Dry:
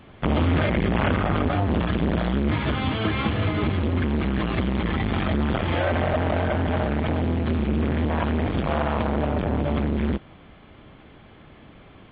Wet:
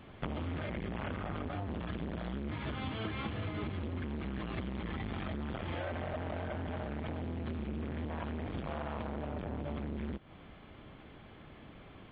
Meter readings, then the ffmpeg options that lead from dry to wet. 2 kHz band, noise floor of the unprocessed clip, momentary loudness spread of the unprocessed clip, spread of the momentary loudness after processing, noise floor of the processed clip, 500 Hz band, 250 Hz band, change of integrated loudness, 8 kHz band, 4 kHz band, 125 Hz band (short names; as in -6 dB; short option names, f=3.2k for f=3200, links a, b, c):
-15.0 dB, -49 dBFS, 2 LU, 15 LU, -54 dBFS, -15.5 dB, -15.5 dB, -15.5 dB, n/a, -14.5 dB, -15.0 dB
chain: -af "acompressor=threshold=-30dB:ratio=6,volume=-5dB"